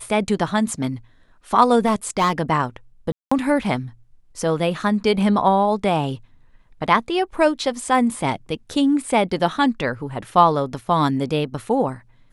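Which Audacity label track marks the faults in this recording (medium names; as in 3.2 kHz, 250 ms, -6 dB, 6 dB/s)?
1.850000	2.330000	clipped -14 dBFS
3.120000	3.310000	dropout 195 ms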